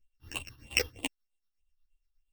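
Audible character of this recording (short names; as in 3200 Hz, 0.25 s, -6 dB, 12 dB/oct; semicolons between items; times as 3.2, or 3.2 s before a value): a buzz of ramps at a fixed pitch in blocks of 16 samples; phasing stages 6, 3.2 Hz, lowest notch 580–1600 Hz; tremolo triangle 8.4 Hz, depth 80%; a shimmering, thickened sound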